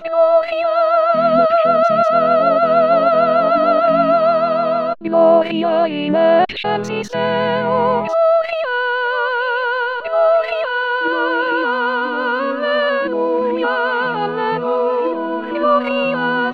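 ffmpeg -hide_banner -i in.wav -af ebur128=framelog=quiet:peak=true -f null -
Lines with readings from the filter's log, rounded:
Integrated loudness:
  I:         -15.7 LUFS
  Threshold: -25.7 LUFS
Loudness range:
  LRA:         4.5 LU
  Threshold: -35.8 LUFS
  LRA low:   -17.9 LUFS
  LRA high:  -13.4 LUFS
True peak:
  Peak:       -1.1 dBFS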